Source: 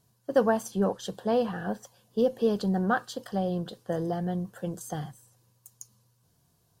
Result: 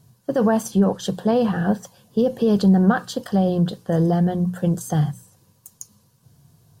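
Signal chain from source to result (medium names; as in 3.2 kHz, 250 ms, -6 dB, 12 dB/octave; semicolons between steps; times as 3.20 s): peak limiter -20.5 dBFS, peak gain reduction 9.5 dB; peaking EQ 130 Hz +10.5 dB 1.4 oct; hum notches 60/120/180 Hz; trim +8 dB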